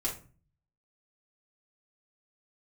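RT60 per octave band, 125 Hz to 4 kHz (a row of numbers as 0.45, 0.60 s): 0.80, 0.60, 0.40, 0.35, 0.30, 0.25 s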